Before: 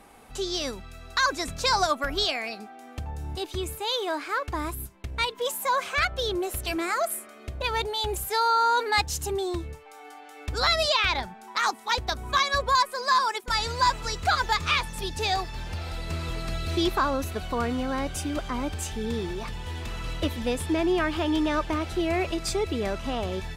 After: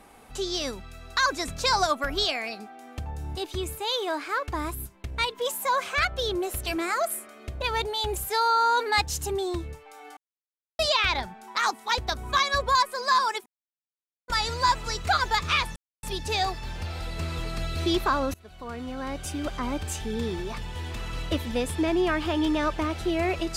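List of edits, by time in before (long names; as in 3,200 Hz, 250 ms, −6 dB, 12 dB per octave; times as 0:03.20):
0:10.17–0:10.79: silence
0:13.46: splice in silence 0.82 s
0:14.94: splice in silence 0.27 s
0:17.25–0:18.51: fade in, from −24 dB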